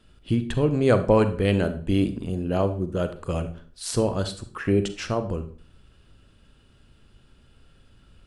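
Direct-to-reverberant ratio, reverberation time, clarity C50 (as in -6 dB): 10.0 dB, 0.45 s, 12.0 dB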